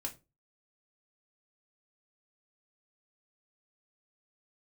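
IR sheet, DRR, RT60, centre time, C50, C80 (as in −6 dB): 1.5 dB, 0.25 s, 10 ms, 16.0 dB, 23.0 dB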